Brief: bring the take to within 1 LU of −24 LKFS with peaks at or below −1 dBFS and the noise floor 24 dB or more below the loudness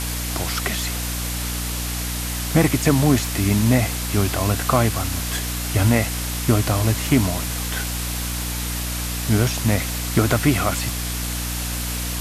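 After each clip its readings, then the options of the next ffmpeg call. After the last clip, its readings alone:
mains hum 60 Hz; hum harmonics up to 300 Hz; level of the hum −25 dBFS; background noise floor −26 dBFS; target noise floor −46 dBFS; integrated loudness −21.5 LKFS; sample peak −3.5 dBFS; target loudness −24.0 LKFS
→ -af "bandreject=frequency=60:width_type=h:width=4,bandreject=frequency=120:width_type=h:width=4,bandreject=frequency=180:width_type=h:width=4,bandreject=frequency=240:width_type=h:width=4,bandreject=frequency=300:width_type=h:width=4"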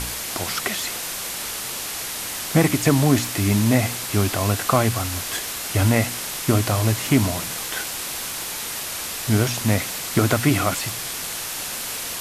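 mains hum none found; background noise floor −30 dBFS; target noise floor −46 dBFS
→ -af "afftdn=noise_reduction=16:noise_floor=-30"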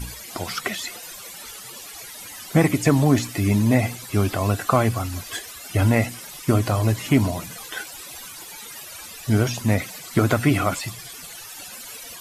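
background noise floor −39 dBFS; target noise floor −47 dBFS
→ -af "afftdn=noise_reduction=8:noise_floor=-39"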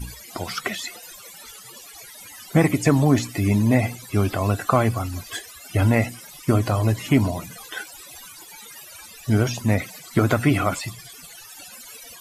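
background noise floor −43 dBFS; target noise floor −47 dBFS
→ -af "afftdn=noise_reduction=6:noise_floor=-43"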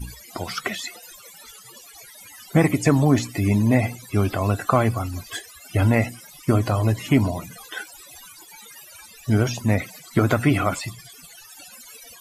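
background noise floor −46 dBFS; integrated loudness −22.0 LKFS; sample peak −4.5 dBFS; target loudness −24.0 LKFS
→ -af "volume=-2dB"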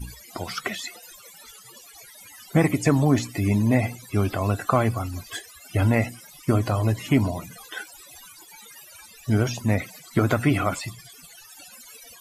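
integrated loudness −24.0 LKFS; sample peak −6.5 dBFS; background noise floor −48 dBFS

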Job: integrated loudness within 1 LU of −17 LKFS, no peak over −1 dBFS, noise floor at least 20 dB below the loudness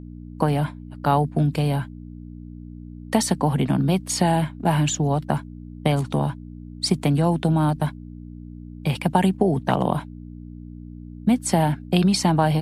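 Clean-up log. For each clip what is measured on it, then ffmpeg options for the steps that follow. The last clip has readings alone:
mains hum 60 Hz; hum harmonics up to 300 Hz; level of the hum −34 dBFS; integrated loudness −22.5 LKFS; sample peak −2.0 dBFS; target loudness −17.0 LKFS
→ -af "bandreject=frequency=60:width_type=h:width=4,bandreject=frequency=120:width_type=h:width=4,bandreject=frequency=180:width_type=h:width=4,bandreject=frequency=240:width_type=h:width=4,bandreject=frequency=300:width_type=h:width=4"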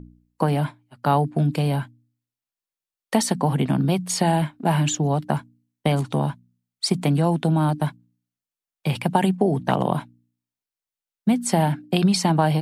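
mains hum none found; integrated loudness −22.5 LKFS; sample peak −2.0 dBFS; target loudness −17.0 LKFS
→ -af "volume=5.5dB,alimiter=limit=-1dB:level=0:latency=1"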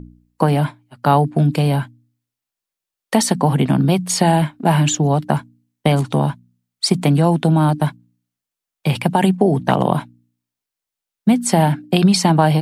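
integrated loudness −17.0 LKFS; sample peak −1.0 dBFS; background noise floor −86 dBFS

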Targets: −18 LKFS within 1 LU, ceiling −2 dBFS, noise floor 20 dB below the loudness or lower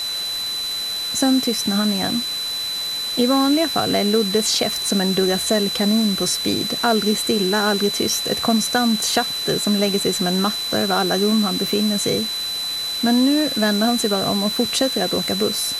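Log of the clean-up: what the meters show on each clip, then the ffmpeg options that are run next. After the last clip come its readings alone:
interfering tone 4,000 Hz; level of the tone −23 dBFS; background noise floor −25 dBFS; target noise floor −39 dBFS; integrated loudness −19.0 LKFS; sample peak −6.0 dBFS; target loudness −18.0 LKFS
→ -af "bandreject=frequency=4000:width=30"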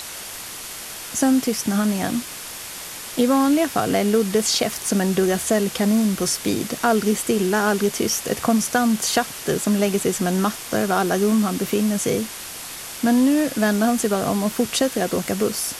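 interfering tone none found; background noise floor −34 dBFS; target noise floor −41 dBFS
→ -af "afftdn=noise_reduction=7:noise_floor=-34"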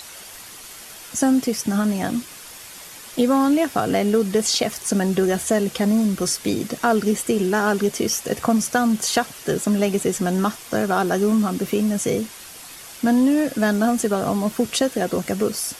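background noise floor −40 dBFS; target noise floor −41 dBFS
→ -af "afftdn=noise_reduction=6:noise_floor=-40"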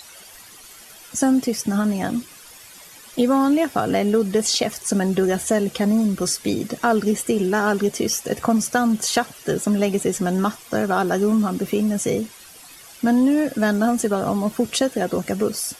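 background noise floor −44 dBFS; integrated loudness −21.0 LKFS; sample peak −6.5 dBFS; target loudness −18.0 LKFS
→ -af "volume=3dB"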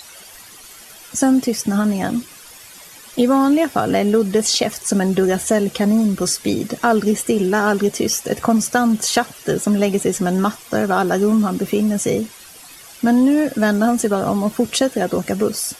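integrated loudness −18.0 LKFS; sample peak −3.5 dBFS; background noise floor −41 dBFS

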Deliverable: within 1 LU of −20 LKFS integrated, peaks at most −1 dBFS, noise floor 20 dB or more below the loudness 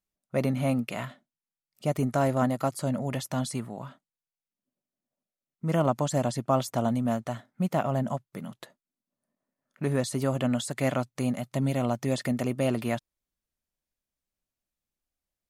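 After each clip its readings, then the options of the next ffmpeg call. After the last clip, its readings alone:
integrated loudness −29.0 LKFS; sample peak −11.0 dBFS; target loudness −20.0 LKFS
→ -af "volume=9dB"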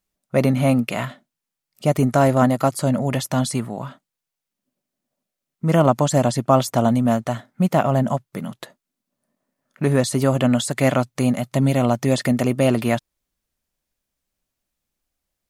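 integrated loudness −20.0 LKFS; sample peak −2.0 dBFS; background noise floor −85 dBFS

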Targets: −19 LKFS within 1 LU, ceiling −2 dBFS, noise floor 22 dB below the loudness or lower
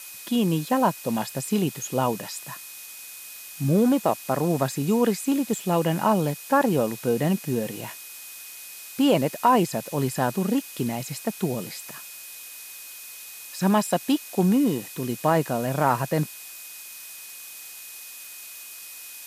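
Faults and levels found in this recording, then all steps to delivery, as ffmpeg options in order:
interfering tone 2,500 Hz; level of the tone −48 dBFS; background noise floor −41 dBFS; target noise floor −47 dBFS; integrated loudness −24.5 LKFS; sample peak −6.0 dBFS; target loudness −19.0 LKFS
→ -af "bandreject=frequency=2500:width=30"
-af "afftdn=noise_reduction=6:noise_floor=-41"
-af "volume=5.5dB,alimiter=limit=-2dB:level=0:latency=1"

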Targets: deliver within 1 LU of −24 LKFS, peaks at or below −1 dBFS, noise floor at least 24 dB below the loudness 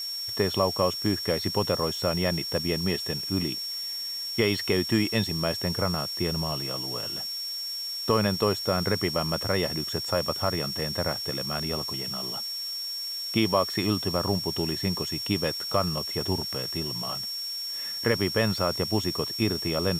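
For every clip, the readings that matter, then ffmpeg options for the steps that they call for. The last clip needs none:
interfering tone 5,500 Hz; level of the tone −31 dBFS; background noise floor −34 dBFS; target noise floor −51 dBFS; integrated loudness −27.0 LKFS; sample peak −10.0 dBFS; target loudness −24.0 LKFS
→ -af "bandreject=frequency=5500:width=30"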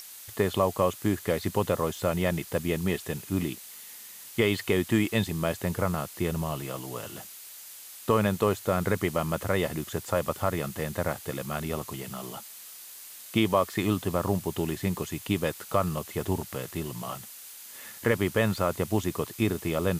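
interfering tone none found; background noise floor −46 dBFS; target noise floor −53 dBFS
→ -af "afftdn=noise_reduction=7:noise_floor=-46"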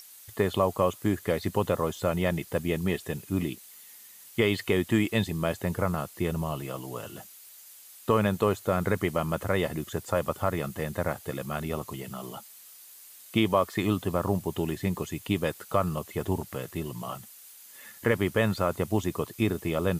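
background noise floor −50 dBFS; target noise floor −53 dBFS
→ -af "afftdn=noise_reduction=6:noise_floor=-50"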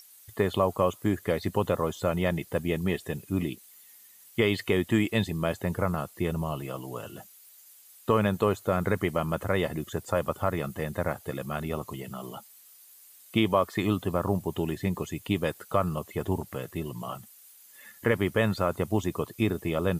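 background noise floor −54 dBFS; integrated loudness −29.0 LKFS; sample peak −10.5 dBFS; target loudness −24.0 LKFS
→ -af "volume=5dB"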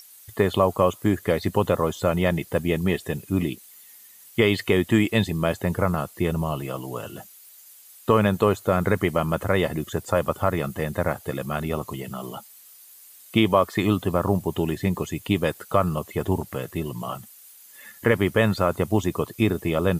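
integrated loudness −24.0 LKFS; sample peak −5.5 dBFS; background noise floor −49 dBFS

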